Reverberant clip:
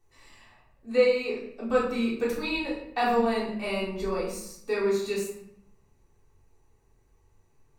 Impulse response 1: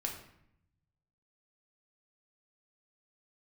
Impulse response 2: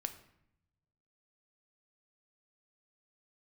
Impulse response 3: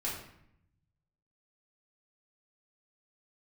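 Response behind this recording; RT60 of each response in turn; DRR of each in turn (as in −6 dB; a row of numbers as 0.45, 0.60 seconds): 3; 0.70, 0.75, 0.70 seconds; 0.0, 7.5, −7.0 decibels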